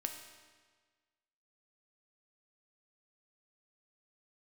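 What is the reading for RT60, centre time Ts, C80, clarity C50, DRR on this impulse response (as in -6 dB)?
1.5 s, 31 ms, 8.0 dB, 6.5 dB, 4.0 dB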